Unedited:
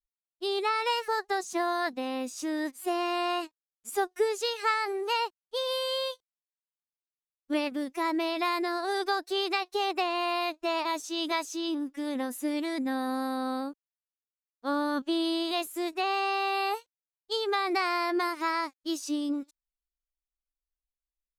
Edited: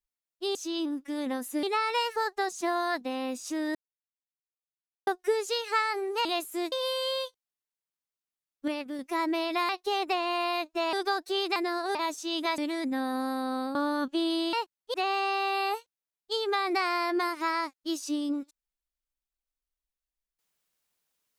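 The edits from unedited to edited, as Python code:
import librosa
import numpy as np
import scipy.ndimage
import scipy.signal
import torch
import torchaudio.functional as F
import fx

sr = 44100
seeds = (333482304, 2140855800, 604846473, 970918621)

y = fx.edit(x, sr, fx.silence(start_s=2.67, length_s=1.32),
    fx.swap(start_s=5.17, length_s=0.41, other_s=15.47, other_length_s=0.47),
    fx.clip_gain(start_s=7.54, length_s=0.31, db=-4.5),
    fx.swap(start_s=8.55, length_s=0.39, other_s=9.57, other_length_s=1.24),
    fx.move(start_s=11.44, length_s=1.08, to_s=0.55),
    fx.cut(start_s=13.69, length_s=1.0), tone=tone)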